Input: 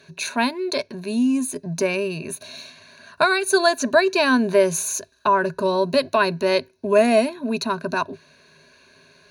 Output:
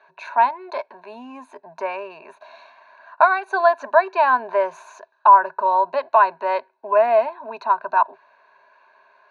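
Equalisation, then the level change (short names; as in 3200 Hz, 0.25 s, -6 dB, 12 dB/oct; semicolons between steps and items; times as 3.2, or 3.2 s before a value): resonant high-pass 850 Hz, resonance Q 4.9; LPF 1600 Hz 12 dB/oct; -1.0 dB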